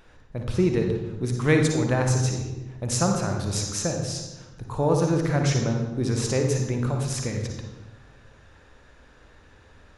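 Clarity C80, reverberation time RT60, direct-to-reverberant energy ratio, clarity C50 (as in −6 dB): 6.5 dB, 1.1 s, 3.0 dB, 3.5 dB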